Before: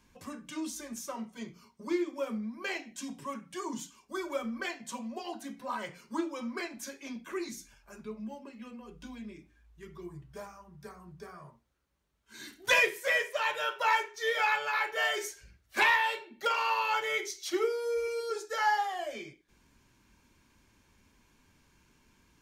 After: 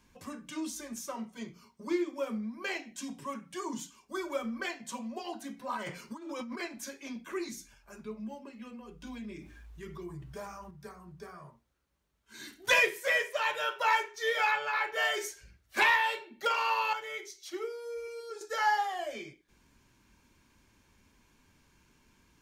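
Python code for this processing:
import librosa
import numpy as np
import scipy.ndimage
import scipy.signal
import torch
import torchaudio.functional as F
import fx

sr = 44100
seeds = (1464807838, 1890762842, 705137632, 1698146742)

y = fx.over_compress(x, sr, threshold_db=-42.0, ratio=-1.0, at=(5.77, 6.59), fade=0.02)
y = fx.env_flatten(y, sr, amount_pct=50, at=(9.07, 10.71))
y = fx.high_shelf(y, sr, hz=5700.0, db=-8.5, at=(14.51, 14.94))
y = fx.edit(y, sr, fx.clip_gain(start_s=16.93, length_s=1.48, db=-8.0), tone=tone)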